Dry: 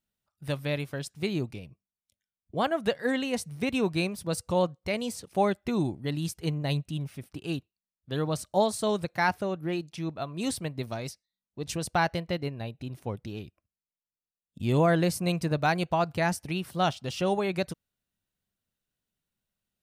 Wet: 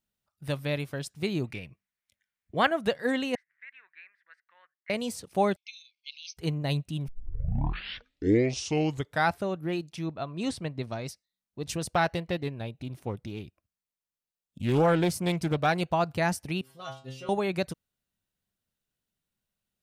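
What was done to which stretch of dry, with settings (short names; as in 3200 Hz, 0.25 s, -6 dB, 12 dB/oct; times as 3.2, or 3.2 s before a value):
1.44–2.71 bell 1900 Hz +13.5 dB 1.1 oct
3.35–4.9 Butterworth band-pass 1800 Hz, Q 4.1
5.56–6.37 brick-wall FIR band-pass 2100–6400 Hz
7.08 tape start 2.37 s
10.06–11.09 air absorption 70 m
11.81–15.81 Doppler distortion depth 0.38 ms
16.61–17.29 metallic resonator 130 Hz, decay 0.43 s, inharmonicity 0.002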